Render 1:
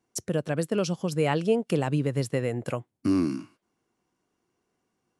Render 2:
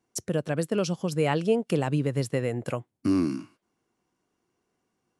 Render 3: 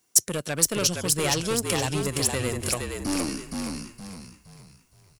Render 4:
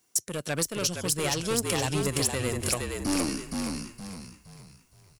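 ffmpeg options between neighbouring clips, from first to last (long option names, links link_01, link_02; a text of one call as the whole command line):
ffmpeg -i in.wav -af anull out.wav
ffmpeg -i in.wav -filter_complex "[0:a]aeval=exprs='(tanh(14.1*val(0)+0.35)-tanh(0.35))/14.1':channel_layout=same,asplit=6[link_01][link_02][link_03][link_04][link_05][link_06];[link_02]adelay=467,afreqshift=-43,volume=-4dB[link_07];[link_03]adelay=934,afreqshift=-86,volume=-12.6dB[link_08];[link_04]adelay=1401,afreqshift=-129,volume=-21.3dB[link_09];[link_05]adelay=1868,afreqshift=-172,volume=-29.9dB[link_10];[link_06]adelay=2335,afreqshift=-215,volume=-38.5dB[link_11];[link_01][link_07][link_08][link_09][link_10][link_11]amix=inputs=6:normalize=0,crystalizer=i=8.5:c=0,volume=-1dB" out.wav
ffmpeg -i in.wav -af "alimiter=limit=-12.5dB:level=0:latency=1:release=378" out.wav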